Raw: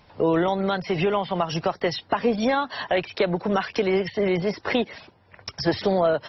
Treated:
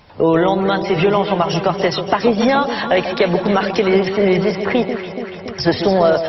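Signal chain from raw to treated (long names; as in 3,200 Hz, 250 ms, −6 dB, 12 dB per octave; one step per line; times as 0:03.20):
0:04.55–0:05.57: high-frequency loss of the air 300 metres
delay that swaps between a low-pass and a high-pass 142 ms, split 920 Hz, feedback 82%, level −8 dB
level +7 dB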